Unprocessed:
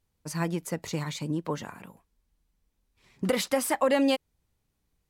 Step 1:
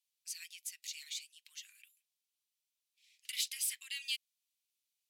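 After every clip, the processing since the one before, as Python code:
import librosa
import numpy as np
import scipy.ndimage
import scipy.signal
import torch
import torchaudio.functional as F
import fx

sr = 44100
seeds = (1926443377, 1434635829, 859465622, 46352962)

y = scipy.signal.sosfilt(scipy.signal.butter(6, 2500.0, 'highpass', fs=sr, output='sos'), x)
y = y * 10.0 ** (-2.5 / 20.0)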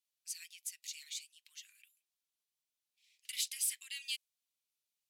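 y = fx.dynamic_eq(x, sr, hz=8900.0, q=0.82, threshold_db=-49.0, ratio=4.0, max_db=5)
y = y * 10.0 ** (-3.0 / 20.0)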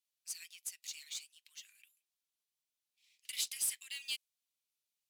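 y = fx.quant_float(x, sr, bits=2)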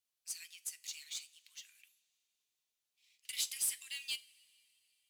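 y = fx.rev_double_slope(x, sr, seeds[0], early_s=0.28, late_s=3.3, knee_db=-22, drr_db=11.5)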